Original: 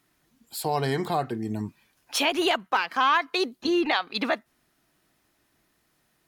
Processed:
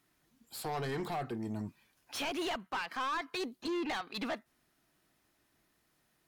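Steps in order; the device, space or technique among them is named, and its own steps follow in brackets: saturation between pre-emphasis and de-emphasis (high shelf 6100 Hz +12 dB; soft clip -26.5 dBFS, distortion -7 dB; high shelf 6100 Hz -12 dB); gain -5 dB

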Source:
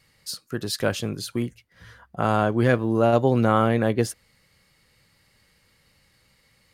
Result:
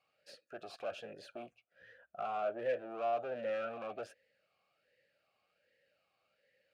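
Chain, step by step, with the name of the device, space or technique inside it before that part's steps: talk box (tube stage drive 28 dB, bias 0.55; vowel sweep a-e 1.3 Hz); gain +3 dB

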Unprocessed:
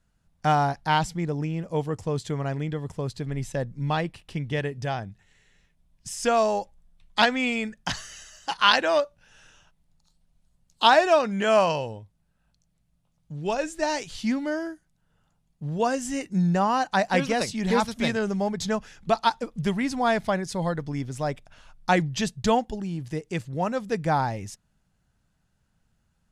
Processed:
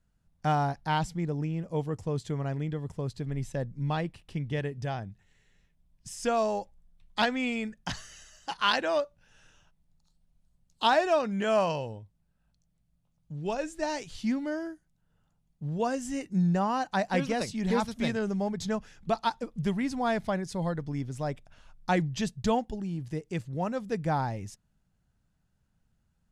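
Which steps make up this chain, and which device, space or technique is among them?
parallel distortion (in parallel at -14 dB: hard clip -16 dBFS, distortion -14 dB); on the sum: low shelf 440 Hz +5 dB; gain -8.5 dB

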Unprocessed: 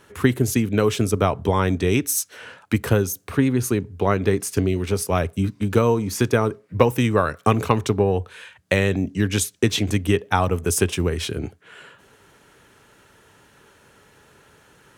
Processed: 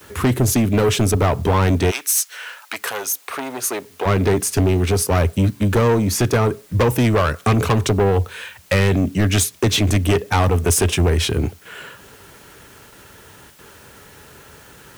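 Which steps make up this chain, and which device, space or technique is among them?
gate with hold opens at -44 dBFS; open-reel tape (soft clip -20 dBFS, distortion -7 dB; bell 67 Hz +5 dB 1.14 oct; white noise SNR 32 dB); 1.9–4.05 HPF 1300 Hz -> 500 Hz 12 dB/oct; gain +8 dB

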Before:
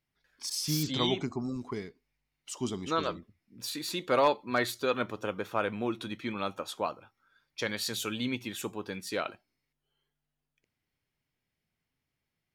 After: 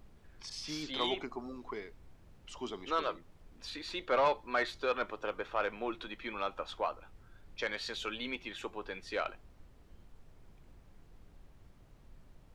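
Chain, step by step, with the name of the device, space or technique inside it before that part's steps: aircraft cabin announcement (BPF 450–3300 Hz; soft clip -21 dBFS, distortion -16 dB; brown noise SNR 16 dB)

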